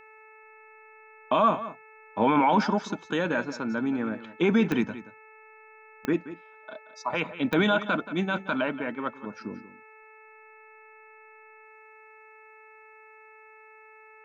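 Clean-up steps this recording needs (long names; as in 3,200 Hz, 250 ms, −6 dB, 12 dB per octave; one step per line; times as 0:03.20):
click removal
hum removal 436 Hz, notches 6
echo removal 178 ms −14.5 dB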